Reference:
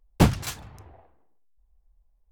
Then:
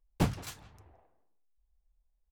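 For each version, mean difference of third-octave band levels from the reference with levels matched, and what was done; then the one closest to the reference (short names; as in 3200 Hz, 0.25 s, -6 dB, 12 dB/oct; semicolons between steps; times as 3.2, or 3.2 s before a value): 1.0 dB: flange 1.2 Hz, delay 1.8 ms, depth 8.6 ms, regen -73%; speakerphone echo 0.17 s, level -16 dB; gain -6 dB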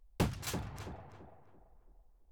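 9.5 dB: compressor 2.5:1, threshold -36 dBFS, peak gain reduction 16 dB; on a send: tape echo 0.335 s, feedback 41%, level -5 dB, low-pass 1500 Hz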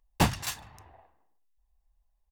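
3.5 dB: low shelf 410 Hz -10.5 dB; comb 1.1 ms, depth 32%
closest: first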